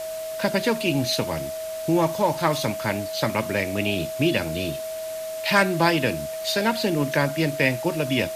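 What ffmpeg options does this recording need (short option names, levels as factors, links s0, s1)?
-af "adeclick=t=4,bandreject=f=640:w=30,afwtdn=0.01"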